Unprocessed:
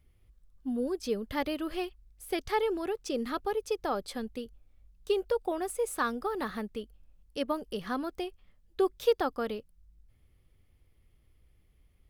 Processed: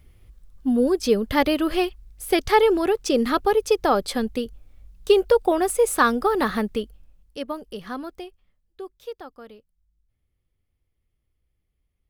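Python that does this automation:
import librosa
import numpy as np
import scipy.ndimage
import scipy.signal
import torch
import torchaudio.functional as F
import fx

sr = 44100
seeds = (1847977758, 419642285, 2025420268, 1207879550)

y = fx.gain(x, sr, db=fx.line((6.77, 12.0), (7.41, 1.0), (8.06, 1.0), (8.84, -10.0)))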